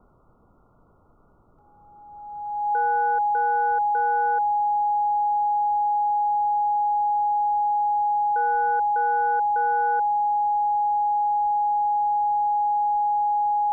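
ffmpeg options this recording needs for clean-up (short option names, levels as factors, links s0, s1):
-af "bandreject=f=830:w=30,agate=range=0.0891:threshold=0.00355"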